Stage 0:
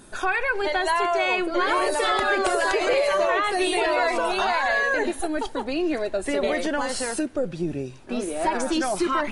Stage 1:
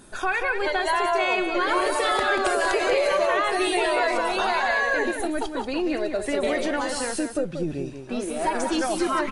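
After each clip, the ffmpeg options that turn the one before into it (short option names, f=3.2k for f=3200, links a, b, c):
-af "aecho=1:1:185:0.422,volume=-1dB"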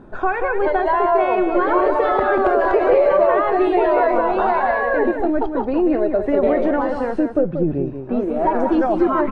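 -af "lowpass=1k,volume=8.5dB"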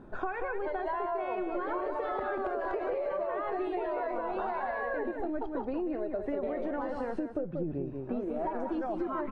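-af "acompressor=threshold=-23dB:ratio=6,volume=-7.5dB"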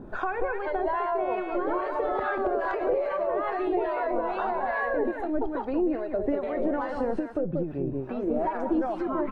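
-filter_complex "[0:a]acrossover=split=770[a][b];[a]aeval=exprs='val(0)*(1-0.7/2+0.7/2*cos(2*PI*2.4*n/s))':c=same[c];[b]aeval=exprs='val(0)*(1-0.7/2-0.7/2*cos(2*PI*2.4*n/s))':c=same[d];[c][d]amix=inputs=2:normalize=0,volume=9dB"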